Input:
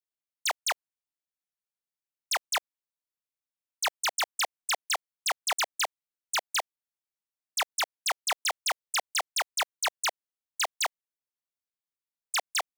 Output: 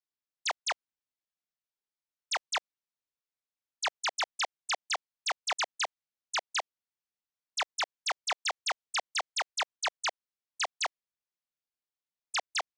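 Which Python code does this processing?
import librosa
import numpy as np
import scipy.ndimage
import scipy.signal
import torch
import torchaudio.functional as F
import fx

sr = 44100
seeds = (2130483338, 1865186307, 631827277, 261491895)

y = scipy.signal.sosfilt(scipy.signal.butter(4, 6800.0, 'lowpass', fs=sr, output='sos'), x)
y = y * librosa.db_to_amplitude(-2.5)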